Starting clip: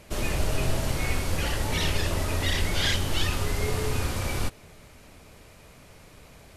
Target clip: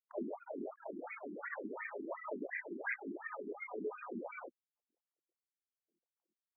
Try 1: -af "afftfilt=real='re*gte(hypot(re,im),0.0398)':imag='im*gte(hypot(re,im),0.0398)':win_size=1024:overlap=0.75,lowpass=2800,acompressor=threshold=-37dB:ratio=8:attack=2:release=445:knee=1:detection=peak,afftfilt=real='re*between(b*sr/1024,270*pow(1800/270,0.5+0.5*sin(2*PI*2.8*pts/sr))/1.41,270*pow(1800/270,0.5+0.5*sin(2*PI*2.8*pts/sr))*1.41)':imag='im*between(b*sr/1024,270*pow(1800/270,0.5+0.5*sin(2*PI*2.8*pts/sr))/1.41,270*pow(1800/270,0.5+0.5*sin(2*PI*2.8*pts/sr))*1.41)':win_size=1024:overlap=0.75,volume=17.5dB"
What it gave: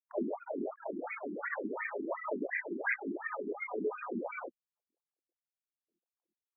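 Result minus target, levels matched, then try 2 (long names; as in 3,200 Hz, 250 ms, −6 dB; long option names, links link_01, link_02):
downward compressor: peak gain reduction −6 dB
-af "afftfilt=real='re*gte(hypot(re,im),0.0398)':imag='im*gte(hypot(re,im),0.0398)':win_size=1024:overlap=0.75,lowpass=2800,acompressor=threshold=-44dB:ratio=8:attack=2:release=445:knee=1:detection=peak,afftfilt=real='re*between(b*sr/1024,270*pow(1800/270,0.5+0.5*sin(2*PI*2.8*pts/sr))/1.41,270*pow(1800/270,0.5+0.5*sin(2*PI*2.8*pts/sr))*1.41)':imag='im*between(b*sr/1024,270*pow(1800/270,0.5+0.5*sin(2*PI*2.8*pts/sr))/1.41,270*pow(1800/270,0.5+0.5*sin(2*PI*2.8*pts/sr))*1.41)':win_size=1024:overlap=0.75,volume=17.5dB"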